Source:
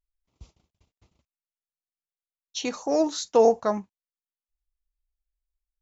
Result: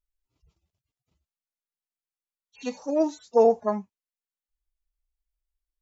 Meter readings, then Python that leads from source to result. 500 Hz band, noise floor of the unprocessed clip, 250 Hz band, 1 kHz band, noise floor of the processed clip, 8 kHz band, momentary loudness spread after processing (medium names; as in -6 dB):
-0.5 dB, under -85 dBFS, -0.5 dB, -1.5 dB, under -85 dBFS, no reading, 15 LU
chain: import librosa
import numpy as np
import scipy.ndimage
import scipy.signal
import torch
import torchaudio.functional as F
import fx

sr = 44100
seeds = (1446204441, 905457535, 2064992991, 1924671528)

y = fx.hpss_only(x, sr, part='harmonic')